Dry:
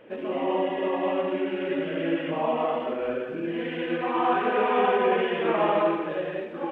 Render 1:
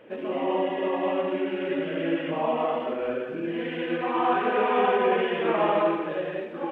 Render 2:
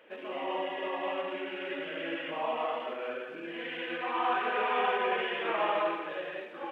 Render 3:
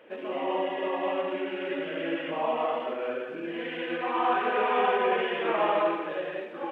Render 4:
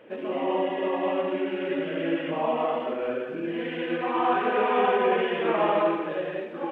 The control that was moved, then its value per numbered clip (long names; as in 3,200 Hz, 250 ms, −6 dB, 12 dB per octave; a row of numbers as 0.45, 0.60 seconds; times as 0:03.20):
high-pass filter, corner frequency: 45, 1,300, 520, 120 Hertz